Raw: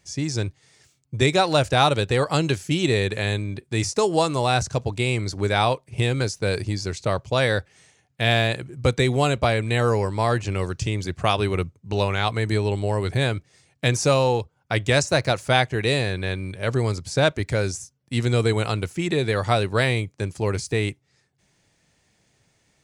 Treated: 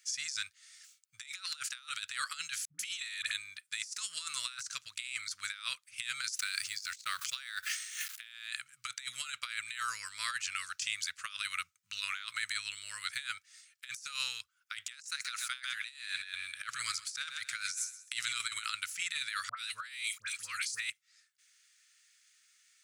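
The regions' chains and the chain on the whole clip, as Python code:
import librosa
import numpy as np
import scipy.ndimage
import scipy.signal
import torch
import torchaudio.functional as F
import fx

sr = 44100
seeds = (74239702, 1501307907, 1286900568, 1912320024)

y = fx.chain(x, sr, fx.peak_eq(hz=73.0, db=-3.0, octaves=2.1),
    fx.dispersion(late='highs', ms=142.0, hz=500.0),
    fx.band_squash(depth_pct=40), at=(2.65, 3.32))
y = fx.chain(y, sr, fx.law_mismatch(coded='A'),
    fx.pre_swell(db_per_s=25.0), at=(6.39, 8.31))
y = fx.chain(y, sr, fx.echo_feedback(ms=129, feedback_pct=31, wet_db=-14.5),
    fx.transient(attack_db=11, sustain_db=-4),
    fx.over_compress(threshold_db=-19.0, ratio=-1.0), at=(15.03, 18.66))
y = fx.chain(y, sr, fx.dispersion(late='highs', ms=82.0, hz=1400.0),
    fx.sustainer(db_per_s=140.0), at=(19.49, 20.9))
y = scipy.signal.sosfilt(scipy.signal.ellip(4, 1.0, 40, 1300.0, 'highpass', fs=sr, output='sos'), y)
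y = fx.high_shelf(y, sr, hz=4900.0, db=8.5)
y = fx.over_compress(y, sr, threshold_db=-31.0, ratio=-0.5)
y = y * 10.0 ** (-7.0 / 20.0)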